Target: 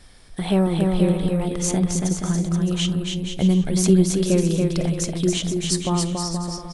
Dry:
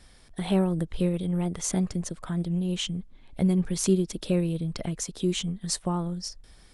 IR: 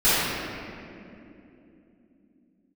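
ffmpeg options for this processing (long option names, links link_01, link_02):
-filter_complex "[0:a]aecho=1:1:280|476|613.2|709.2|776.5:0.631|0.398|0.251|0.158|0.1,asplit=2[link_01][link_02];[1:a]atrim=start_sample=2205,atrim=end_sample=3087[link_03];[link_02][link_03]afir=irnorm=-1:irlink=0,volume=-31dB[link_04];[link_01][link_04]amix=inputs=2:normalize=0,volume=4.5dB"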